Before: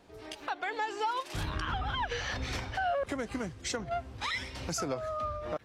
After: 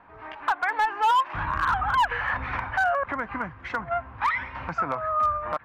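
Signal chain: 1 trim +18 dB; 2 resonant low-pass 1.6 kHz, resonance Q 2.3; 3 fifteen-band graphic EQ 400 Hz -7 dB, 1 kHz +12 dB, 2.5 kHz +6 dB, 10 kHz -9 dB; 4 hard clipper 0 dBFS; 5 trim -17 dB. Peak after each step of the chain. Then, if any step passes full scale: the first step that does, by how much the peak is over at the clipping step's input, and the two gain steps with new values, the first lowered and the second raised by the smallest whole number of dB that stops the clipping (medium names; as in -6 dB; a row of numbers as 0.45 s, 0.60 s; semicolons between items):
-4.5 dBFS, -0.5 dBFS, +6.5 dBFS, 0.0 dBFS, -17.0 dBFS; step 3, 6.5 dB; step 1 +11 dB, step 5 -10 dB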